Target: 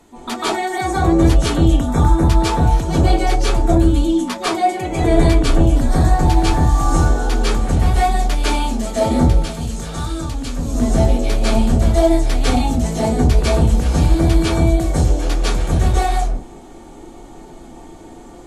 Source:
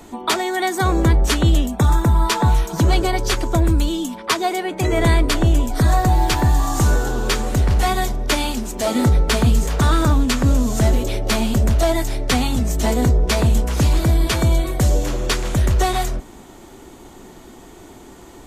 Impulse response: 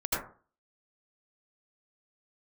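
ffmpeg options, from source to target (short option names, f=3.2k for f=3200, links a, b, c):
-filter_complex "[0:a]asettb=1/sr,asplit=3[a][b][c];[a]atrim=end=9.274[d];[b]atrim=start=9.27:end=10.6,asetpts=PTS-STARTPTS,afade=t=in:d=0.004:c=qsin,afade=t=out:st=1.326:d=0.004:c=qsin,acrossover=split=170|2600[e][f][g];[e]acompressor=threshold=-27dB:ratio=4[h];[f]acompressor=threshold=-33dB:ratio=4[i];[g]acompressor=threshold=-29dB:ratio=4[j];[h][i][j]amix=inputs=3:normalize=0[k];[c]atrim=start=10.596[l];[d][k]acrossfade=d=0.004:c1=hsin:c2=qsin[m];[m][l]acrossfade=d=0.004:c1=qsin:c2=hsin[n];[1:a]atrim=start_sample=2205,afade=t=out:st=0.17:d=0.01,atrim=end_sample=7938,asetrate=23373,aresample=44100[o];[n][o]afir=irnorm=-1:irlink=0,volume=-11dB"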